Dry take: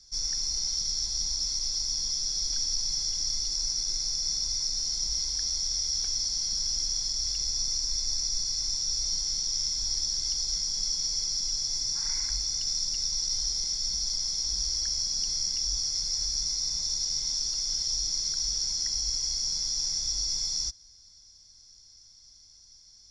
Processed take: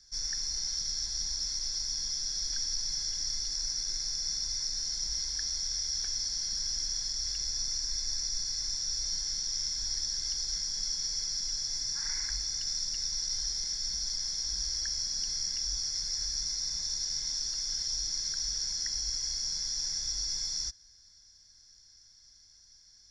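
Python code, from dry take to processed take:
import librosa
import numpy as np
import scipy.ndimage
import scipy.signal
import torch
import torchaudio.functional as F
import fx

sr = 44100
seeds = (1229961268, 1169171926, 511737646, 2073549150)

y = fx.peak_eq(x, sr, hz=1700.0, db=12.0, octaves=0.46)
y = y * 10.0 ** (-4.0 / 20.0)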